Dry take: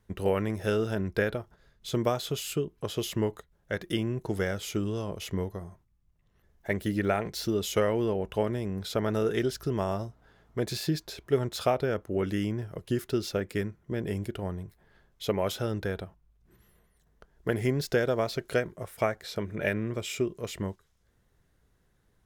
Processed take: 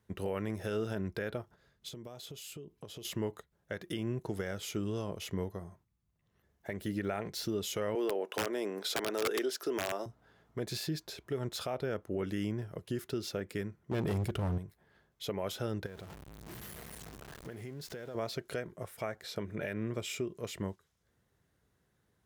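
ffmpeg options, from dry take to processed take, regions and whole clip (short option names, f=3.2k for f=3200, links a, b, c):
-filter_complex "[0:a]asettb=1/sr,asplit=3[a][b][c];[a]atrim=end=1.884[d];[b]atrim=start=1.88:end=3.05,asetpts=PTS-STARTPTS,afade=t=in:d=0.004:c=qsin,afade=t=out:st=1.166:d=0.004:c=qsin,equalizer=f=1.4k:w=1.4:g=-5.5,acompressor=threshold=-39dB:ratio=10:attack=3.2:release=140:knee=1:detection=peak[e];[c]atrim=start=3.046[f];[d][e]acrossfade=d=0.004:c1=hsin:c2=qsin[g];[g][f]acrossfade=d=0.004:c1=qsin:c2=hsin,asettb=1/sr,asplit=3[h][i][j];[h]atrim=end=7.954[k];[i]atrim=start=7.95:end=10.06,asetpts=PTS-STARTPTS,afade=t=in:d=0.004:c=qsin,afade=t=out:st=2.106:d=0.004:c=qsin,highpass=f=310:w=0.5412,highpass=f=310:w=1.3066,acontrast=72,aeval=exprs='(mod(5.01*val(0)+1,2)-1)/5.01':c=same[l];[j]atrim=start=10.056[m];[k][l]acrossfade=d=0.004:c1=hsin:c2=qsin[n];[n][m]acrossfade=d=0.004:c1=qsin:c2=hsin,asettb=1/sr,asplit=3[o][p][q];[o]atrim=end=13.914[r];[p]atrim=start=13.91:end=14.58,asetpts=PTS-STARTPTS,afade=t=in:d=0.004:c=qsin,afade=t=out:st=0.666:d=0.004:c=qsin,asubboost=boost=9.5:cutoff=210,acontrast=60,asoftclip=type=hard:threshold=-25dB[s];[q]atrim=start=14.576[t];[r][s]acrossfade=d=0.004:c1=hsin:c2=qsin[u];[u][t]acrossfade=d=0.004:c1=qsin:c2=hsin,asettb=1/sr,asplit=3[v][w][x];[v]atrim=end=15.864[y];[w]atrim=start=15.86:end=18.15,asetpts=PTS-STARTPTS,afade=t=in:d=0.004:c=qsin,afade=t=out:st=2.286:d=0.004:c=qsin,aeval=exprs='val(0)+0.5*0.015*sgn(val(0))':c=same,acompressor=threshold=-40dB:ratio=4:attack=3.2:release=140:knee=1:detection=peak[z];[x]atrim=start=18.146[aa];[y][z]acrossfade=d=0.004:c1=hsin:c2=qsin[ab];[ab][aa]acrossfade=d=0.004:c1=qsin:c2=hsin,alimiter=limit=-22dB:level=0:latency=1:release=135,highpass=79,volume=-3.5dB"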